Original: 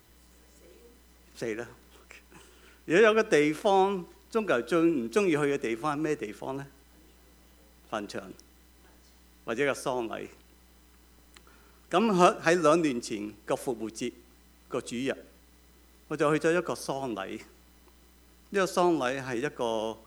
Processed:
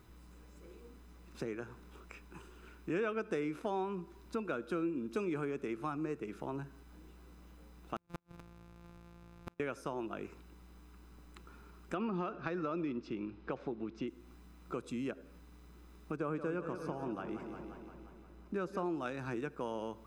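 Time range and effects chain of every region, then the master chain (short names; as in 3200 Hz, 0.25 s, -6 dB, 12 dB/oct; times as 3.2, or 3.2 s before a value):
7.96–9.6 sample sorter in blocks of 256 samples + flipped gate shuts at -25 dBFS, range -40 dB
11.94–14.08 LPF 4400 Hz 24 dB/oct + compressor 3:1, threshold -23 dBFS
16.16–18.86 high shelf 2200 Hz -9 dB + warbling echo 0.176 s, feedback 64%, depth 81 cents, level -11 dB
whole clip: high shelf 2600 Hz -12 dB; comb 0.8 ms, depth 34%; compressor 2.5:1, threshold -40 dBFS; gain +1 dB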